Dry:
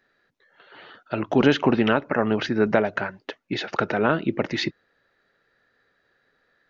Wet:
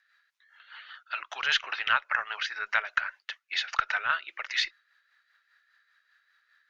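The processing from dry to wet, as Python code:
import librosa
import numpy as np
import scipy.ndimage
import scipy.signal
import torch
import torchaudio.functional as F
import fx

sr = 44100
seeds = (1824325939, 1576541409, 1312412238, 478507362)

y = scipy.signal.sosfilt(scipy.signal.butter(4, 1200.0, 'highpass', fs=sr, output='sos'), x)
y = fx.cheby_harmonics(y, sr, harmonics=(2,), levels_db=(-21,), full_scale_db=-4.5)
y = fx.rotary(y, sr, hz=5.0)
y = F.gain(torch.from_numpy(y), 4.0).numpy()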